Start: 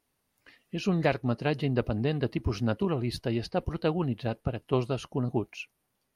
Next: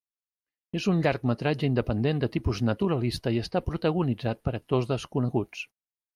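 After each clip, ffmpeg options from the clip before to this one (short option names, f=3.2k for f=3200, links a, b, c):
-filter_complex "[0:a]agate=range=-42dB:threshold=-46dB:ratio=16:detection=peak,asplit=2[a][b];[b]alimiter=limit=-20.5dB:level=0:latency=1:release=89,volume=-2.5dB[c];[a][c]amix=inputs=2:normalize=0,volume=-1.5dB"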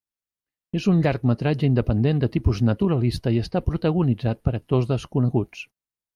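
-af "lowshelf=f=280:g=9"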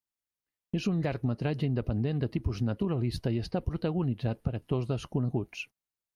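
-af "acompressor=threshold=-24dB:ratio=6,volume=-2dB"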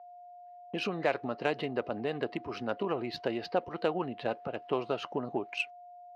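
-af "aeval=exprs='val(0)+0.002*sin(2*PI*710*n/s)':c=same,highpass=550,lowpass=5.8k,adynamicsmooth=sensitivity=3:basefreq=3.3k,volume=8dB"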